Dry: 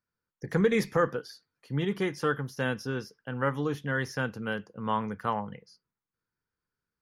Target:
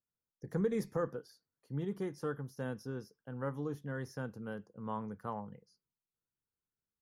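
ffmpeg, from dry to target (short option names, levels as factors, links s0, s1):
-af "equalizer=f=2600:t=o:w=1.8:g=-14,volume=0.422"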